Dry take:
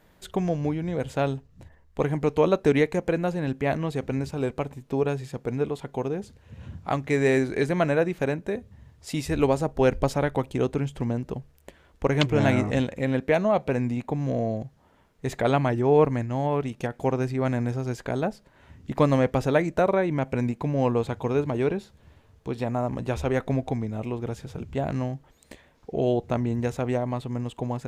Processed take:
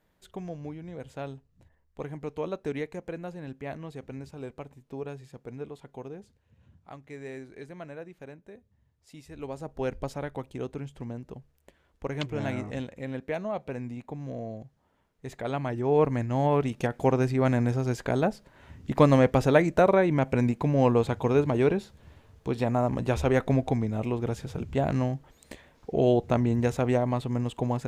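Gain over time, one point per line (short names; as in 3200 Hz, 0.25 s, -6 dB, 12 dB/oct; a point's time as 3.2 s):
6.15 s -12 dB
6.59 s -19 dB
9.33 s -19 dB
9.73 s -10 dB
15.43 s -10 dB
16.43 s +1.5 dB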